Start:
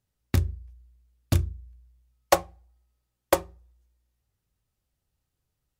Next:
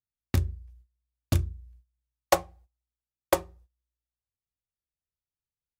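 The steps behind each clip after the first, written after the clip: gate -52 dBFS, range -19 dB; trim -2 dB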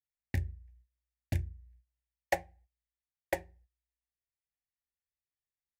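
FFT filter 120 Hz 0 dB, 410 Hz -4 dB, 830 Hz +1 dB, 1.2 kHz -23 dB, 1.8 kHz +10 dB, 3.3 kHz -6 dB; trim -7.5 dB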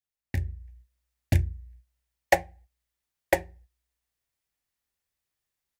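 level rider gain up to 10 dB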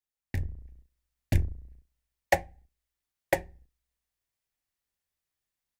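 octave divider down 2 oct, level -4 dB; trim -3 dB

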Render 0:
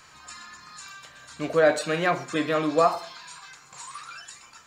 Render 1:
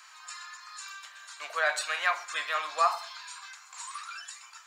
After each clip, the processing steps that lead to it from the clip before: high-pass 900 Hz 24 dB/octave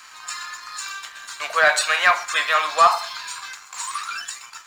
waveshaping leveller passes 1; trim +8 dB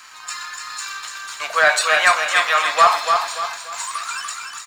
feedback delay 292 ms, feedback 38%, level -5 dB; trim +1.5 dB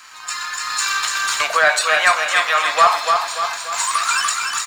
recorder AGC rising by 11 dB/s

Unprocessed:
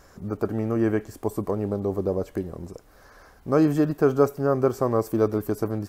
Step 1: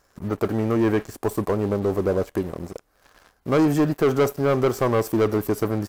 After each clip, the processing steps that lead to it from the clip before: bass shelf 410 Hz -5 dB; waveshaping leveller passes 3; trim -3.5 dB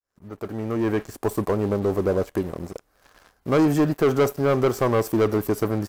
fade-in on the opening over 1.22 s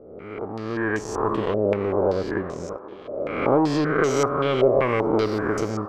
reverse spectral sustain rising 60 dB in 1.12 s; band-passed feedback delay 556 ms, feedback 68%, band-pass 720 Hz, level -12.5 dB; step-sequenced low-pass 5.2 Hz 610–6400 Hz; trim -4.5 dB

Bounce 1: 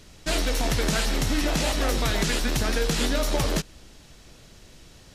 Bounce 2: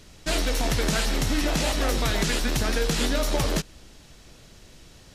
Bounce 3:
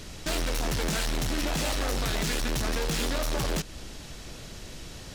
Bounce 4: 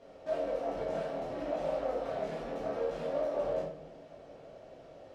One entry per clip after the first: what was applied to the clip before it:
no audible change
in parallel at +0.5 dB: compression, threshold -31 dBFS, peak gain reduction 11 dB; on the sum: saturation -27.5 dBFS, distortion -8 dB; trim +1.5 dB
band-pass filter 600 Hz, Q 3.1; simulated room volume 120 m³, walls mixed, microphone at 1.7 m; trim -3.5 dB

